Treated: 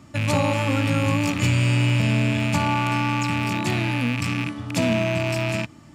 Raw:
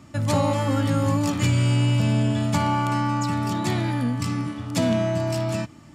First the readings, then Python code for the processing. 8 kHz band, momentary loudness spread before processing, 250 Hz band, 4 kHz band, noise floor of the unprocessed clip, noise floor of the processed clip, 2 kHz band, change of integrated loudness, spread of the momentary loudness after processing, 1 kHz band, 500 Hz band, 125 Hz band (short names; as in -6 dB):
+0.5 dB, 6 LU, 0.0 dB, +3.5 dB, -46 dBFS, -46 dBFS, +7.5 dB, +1.0 dB, 5 LU, 0.0 dB, 0.0 dB, 0.0 dB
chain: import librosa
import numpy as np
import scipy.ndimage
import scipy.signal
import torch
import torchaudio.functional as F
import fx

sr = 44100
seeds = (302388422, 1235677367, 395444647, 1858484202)

y = fx.rattle_buzz(x, sr, strikes_db=-27.0, level_db=-17.0)